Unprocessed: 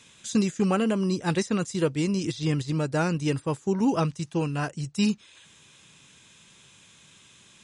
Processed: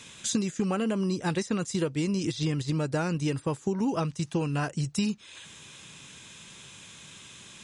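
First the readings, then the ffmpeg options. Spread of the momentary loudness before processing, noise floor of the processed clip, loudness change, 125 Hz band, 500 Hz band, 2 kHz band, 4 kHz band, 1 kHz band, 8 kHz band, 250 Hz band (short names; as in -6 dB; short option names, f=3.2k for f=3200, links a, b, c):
4 LU, -50 dBFS, -2.5 dB, -2.0 dB, -3.5 dB, -2.5 dB, -0.5 dB, -3.5 dB, +1.5 dB, -3.0 dB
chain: -af "acompressor=threshold=-32dB:ratio=6,volume=6.5dB"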